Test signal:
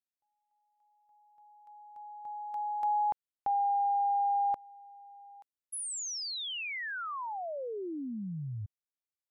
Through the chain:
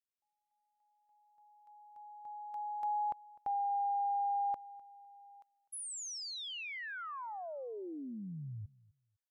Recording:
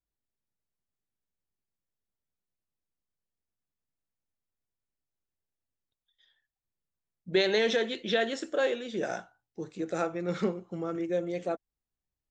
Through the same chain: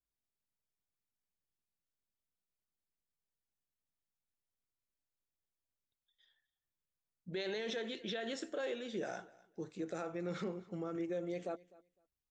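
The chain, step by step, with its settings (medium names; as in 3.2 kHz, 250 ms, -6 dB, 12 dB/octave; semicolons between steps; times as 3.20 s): peak limiter -25.5 dBFS; on a send: feedback delay 253 ms, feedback 17%, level -22 dB; on the sum: trim -5.5 dB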